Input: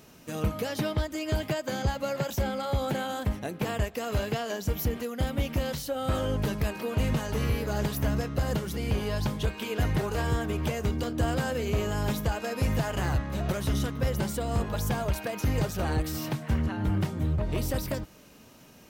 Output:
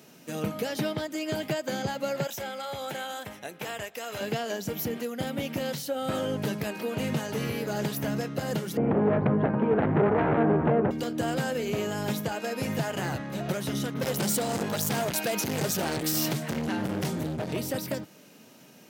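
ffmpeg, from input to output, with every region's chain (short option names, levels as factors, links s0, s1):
-filter_complex "[0:a]asettb=1/sr,asplit=3[s0][s1][s2];[s0]atrim=end=2.274[s3];[s1]atrim=start=2.27:end=4.21,asetpts=PTS-STARTPTS,afade=t=in:d=0.004:c=qsin,afade=t=out:st=1.936:d=0.004:c=qsin,equalizer=f=210:t=o:w=2.3:g=-13,bandreject=f=4500:w=12[s4];[s2]atrim=start=4.206[s5];[s3][s4]acrossfade=d=0.004:c1=hsin:c2=qsin[s6];[s6][s5]acrossfade=d=0.004:c1=qsin:c2=hsin,asettb=1/sr,asplit=3[s7][s8][s9];[s7]atrim=end=8.774[s10];[s8]atrim=start=8.77:end=10.91,asetpts=PTS-STARTPTS,afade=t=in:d=0.004:c=qsin,afade=t=out:st=2.136:d=0.004:c=qsin,lowpass=f=1300:w=0.5412,lowpass=f=1300:w=1.3066,aecho=1:1:278:0.355,atrim=end_sample=94374,aeval=exprs='0.133*sin(PI/2*2.24*val(0)/0.133)':c=same[s11];[s9]atrim=start=10.906[s12];[s10][s11]acrossfade=d=0.004:c1=hsin:c2=qsin[s13];[s13][s12]acrossfade=d=0.004:c1=qsin:c2=hsin,asettb=1/sr,asplit=3[s14][s15][s16];[s14]atrim=end=13.944[s17];[s15]atrim=start=13.94:end=17.53,asetpts=PTS-STARTPTS,afade=t=in:d=0.004:c=qsin,afade=t=out:st=3.586:d=0.004:c=qsin,acontrast=31,volume=17.8,asoftclip=hard,volume=0.0562,adynamicequalizer=threshold=0.00282:dfrequency=3500:dqfactor=0.7:tfrequency=3500:tqfactor=0.7:attack=5:release=100:ratio=0.375:range=3:mode=boostabove:tftype=highshelf[s18];[s16]atrim=start=17.526[s19];[s17][s18]acrossfade=d=0.004:c1=hsin:c2=qsin[s20];[s20][s19]acrossfade=d=0.004:c1=qsin:c2=hsin,highpass=f=140:w=0.5412,highpass=f=140:w=1.3066,equalizer=f=1100:w=4:g=-5,volume=1.12"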